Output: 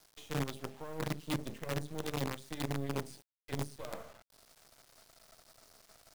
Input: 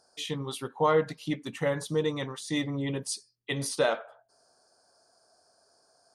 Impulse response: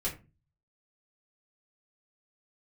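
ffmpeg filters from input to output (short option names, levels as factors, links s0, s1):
-filter_complex "[0:a]areverse,acompressor=threshold=0.0141:ratio=20,areverse,bandreject=f=50:t=h:w=6,bandreject=f=100:t=h:w=6,bandreject=f=150:t=h:w=6,bandreject=f=200:t=h:w=6,bandreject=f=250:t=h:w=6,bandreject=f=300:t=h:w=6,bandreject=f=350:t=h:w=6,bandreject=f=400:t=h:w=6,bandreject=f=450:t=h:w=6,bandreject=f=500:t=h:w=6,asplit=2[s0][s1];[1:a]atrim=start_sample=2205,asetrate=66150,aresample=44100[s2];[s1][s2]afir=irnorm=-1:irlink=0,volume=0.398[s3];[s0][s3]amix=inputs=2:normalize=0,acrossover=split=490[s4][s5];[s5]acompressor=threshold=0.002:ratio=6[s6];[s4][s6]amix=inputs=2:normalize=0,highshelf=f=4200:g=-2.5,acrusher=bits=7:dc=4:mix=0:aa=0.000001,volume=1.78"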